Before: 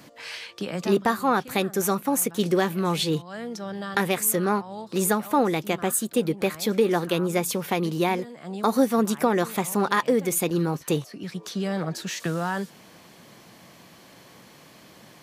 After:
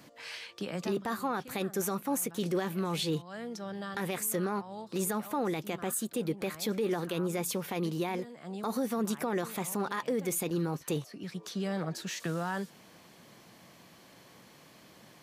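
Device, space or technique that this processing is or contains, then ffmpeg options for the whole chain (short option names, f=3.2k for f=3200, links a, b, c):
clipper into limiter: -af "asoftclip=type=hard:threshold=-9.5dB,alimiter=limit=-17dB:level=0:latency=1:release=10,volume=-6dB"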